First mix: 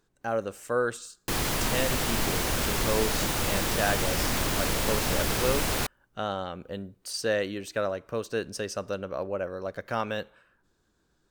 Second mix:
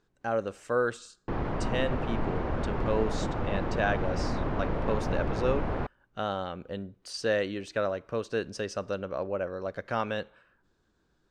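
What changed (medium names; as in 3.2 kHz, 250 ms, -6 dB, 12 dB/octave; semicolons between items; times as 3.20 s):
background: add low-pass 1.1 kHz 12 dB/octave; master: add distance through air 81 m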